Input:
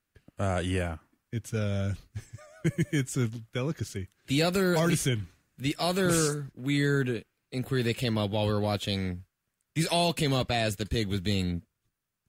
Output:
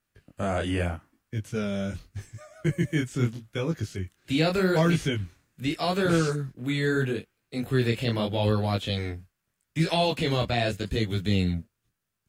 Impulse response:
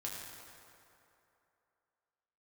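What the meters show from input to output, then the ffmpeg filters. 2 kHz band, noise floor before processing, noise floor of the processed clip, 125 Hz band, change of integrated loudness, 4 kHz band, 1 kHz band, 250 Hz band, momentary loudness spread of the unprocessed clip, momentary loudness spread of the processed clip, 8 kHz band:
+2.0 dB, -83 dBFS, -81 dBFS, +2.0 dB, +1.5 dB, +0.5 dB, +2.0 dB, +2.0 dB, 12 LU, 13 LU, -7.5 dB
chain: -filter_complex "[0:a]flanger=delay=18:depth=7.9:speed=0.81,acrossover=split=4700[a][b];[b]acompressor=threshold=-52dB:ratio=4:attack=1:release=60[c];[a][c]amix=inputs=2:normalize=0,volume=5dB"

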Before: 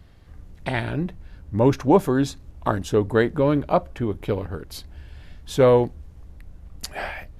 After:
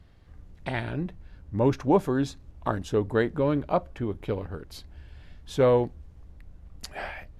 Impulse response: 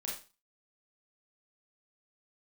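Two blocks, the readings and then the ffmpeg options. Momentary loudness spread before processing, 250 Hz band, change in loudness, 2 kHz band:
17 LU, -5.0 dB, -5.0 dB, -5.0 dB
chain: -af "highshelf=f=9.9k:g=-9,volume=-5dB"

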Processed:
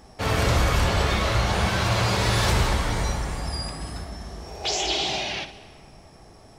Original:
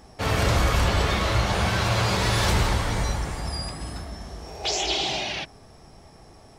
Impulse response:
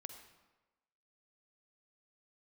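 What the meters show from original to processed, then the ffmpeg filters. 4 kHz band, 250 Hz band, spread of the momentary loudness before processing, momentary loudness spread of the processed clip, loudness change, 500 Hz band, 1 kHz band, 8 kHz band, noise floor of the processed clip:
+0.5 dB, 0.0 dB, 14 LU, 14 LU, +0.5 dB, +0.5 dB, +0.5 dB, +0.5 dB, -49 dBFS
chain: -filter_complex "[0:a]asplit=2[a][b];[1:a]atrim=start_sample=2205,asetrate=22050,aresample=44100,adelay=59[c];[b][c]afir=irnorm=-1:irlink=0,volume=-9.5dB[d];[a][d]amix=inputs=2:normalize=0"

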